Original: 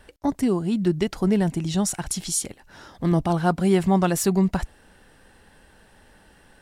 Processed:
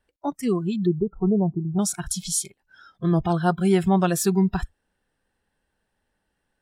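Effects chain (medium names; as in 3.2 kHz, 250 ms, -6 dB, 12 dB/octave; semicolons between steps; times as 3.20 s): 0.86–1.79 s: steep low-pass 1.1 kHz 36 dB/octave; spectral noise reduction 22 dB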